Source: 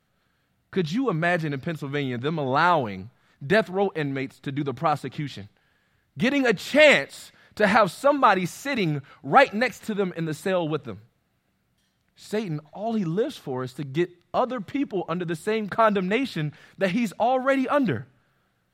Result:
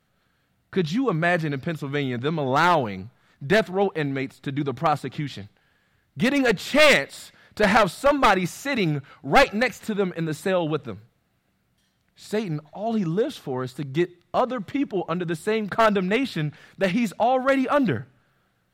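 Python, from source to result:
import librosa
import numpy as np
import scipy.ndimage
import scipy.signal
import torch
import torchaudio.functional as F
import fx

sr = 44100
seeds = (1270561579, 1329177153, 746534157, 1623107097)

y = np.minimum(x, 2.0 * 10.0 ** (-15.0 / 20.0) - x)
y = y * 10.0 ** (1.5 / 20.0)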